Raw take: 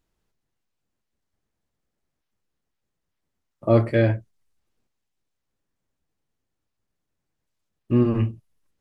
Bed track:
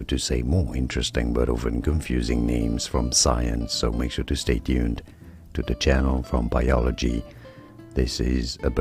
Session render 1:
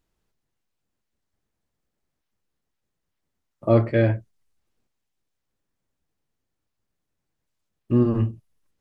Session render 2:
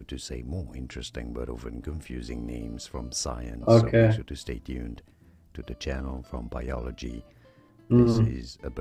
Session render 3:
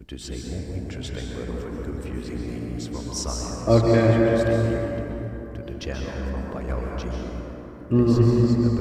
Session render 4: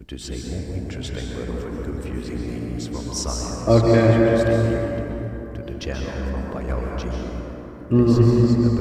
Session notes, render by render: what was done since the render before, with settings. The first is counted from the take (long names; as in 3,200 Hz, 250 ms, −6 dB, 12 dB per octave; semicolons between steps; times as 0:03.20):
0:03.74–0:04.16: high-frequency loss of the air 120 metres; 0:07.92–0:08.33: parametric band 2,300 Hz −14.5 dB 0.46 octaves
mix in bed track −12 dB
dense smooth reverb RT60 3.8 s, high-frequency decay 0.35×, pre-delay 115 ms, DRR −2 dB
level +2.5 dB; brickwall limiter −3 dBFS, peak gain reduction 1 dB